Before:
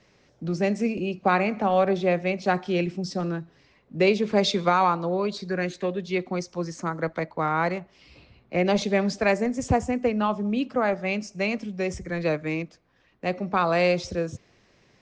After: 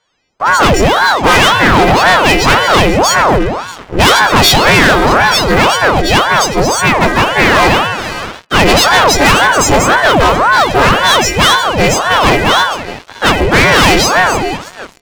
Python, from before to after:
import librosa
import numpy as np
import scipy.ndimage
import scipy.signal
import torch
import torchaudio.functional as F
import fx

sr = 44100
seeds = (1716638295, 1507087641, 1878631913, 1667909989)

y = fx.freq_snap(x, sr, grid_st=4)
y = fx.lowpass(y, sr, hz=3700.0, slope=6)
y = y + 10.0 ** (-21.5 / 20.0) * np.pad(y, (int(624 * sr / 1000.0), 0))[:len(y)]
y = fx.rev_spring(y, sr, rt60_s=1.5, pass_ms=(38, 46), chirp_ms=35, drr_db=8.5)
y = fx.leveller(y, sr, passes=5)
y = fx.ring_lfo(y, sr, carrier_hz=720.0, swing_pct=80, hz=1.9)
y = F.gain(torch.from_numpy(y), 6.5).numpy()